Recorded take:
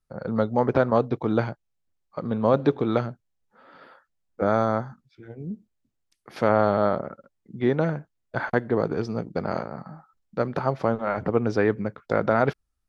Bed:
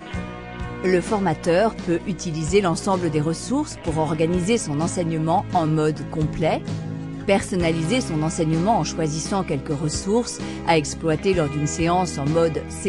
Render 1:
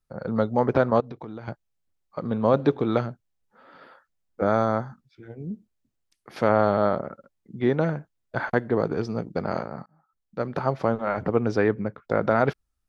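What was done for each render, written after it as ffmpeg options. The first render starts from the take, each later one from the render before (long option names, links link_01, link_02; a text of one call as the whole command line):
ffmpeg -i in.wav -filter_complex "[0:a]asettb=1/sr,asplit=3[link_01][link_02][link_03];[link_01]atrim=end=1.004[link_04];[link_02]atrim=start=1:end=1.48,asetpts=PTS-STARTPTS,afade=type=in:duration=0.004:curve=qsin,afade=type=out:start_time=0.476:duration=0.004:curve=qsin,acompressor=threshold=-33dB:ratio=12:attack=3.2:release=140:knee=1:detection=peak[link_05];[link_03]atrim=start=1.476[link_06];[link_04][link_05]acrossfade=duration=0.004:curve1=hsin:curve2=qsin[link_07];[link_07][link_06]acrossfade=duration=0.004:curve1=qsin:curve2=hsin,asettb=1/sr,asplit=3[link_08][link_09][link_10];[link_08]atrim=end=11.684[link_11];[link_09]atrim=start=11.68:end=12.23,asetpts=PTS-STARTPTS,afade=type=in:duration=0.004:curve=qsin,afade=type=out:start_time=0.546:duration=0.004:curve=qsin,highshelf=frequency=3400:gain=-8[link_12];[link_10]atrim=start=12.226[link_13];[link_11][link_12]acrossfade=duration=0.004:curve1=hsin:curve2=qsin[link_14];[link_14][link_13]acrossfade=duration=0.004:curve1=qsin:curve2=hsin,asplit=2[link_15][link_16];[link_15]atrim=end=9.86,asetpts=PTS-STARTPTS,afade=type=out:start_time=9.856:duration=0.004:curve=hsin[link_17];[link_16]atrim=start=9.86,asetpts=PTS-STARTPTS,afade=type=in:duration=0.8[link_18];[link_17][link_18]concat=n=2:v=0:a=1" out.wav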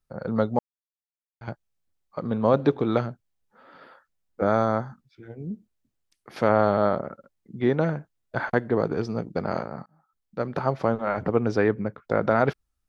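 ffmpeg -i in.wav -filter_complex "[0:a]asplit=3[link_01][link_02][link_03];[link_01]atrim=end=0.59,asetpts=PTS-STARTPTS,afade=type=out:start_time=0.586:duration=0.004:curve=hsin[link_04];[link_02]atrim=start=0.59:end=1.41,asetpts=PTS-STARTPTS,volume=0[link_05];[link_03]atrim=start=1.41,asetpts=PTS-STARTPTS,afade=type=in:duration=0.004:curve=hsin[link_06];[link_04][link_05][link_06]concat=n=3:v=0:a=1" out.wav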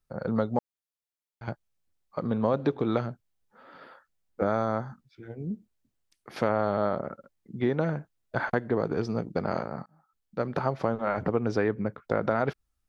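ffmpeg -i in.wav -af "acompressor=threshold=-23dB:ratio=2.5" out.wav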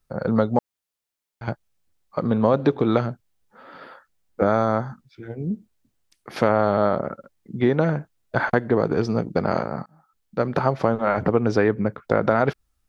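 ffmpeg -i in.wav -af "volume=7dB" out.wav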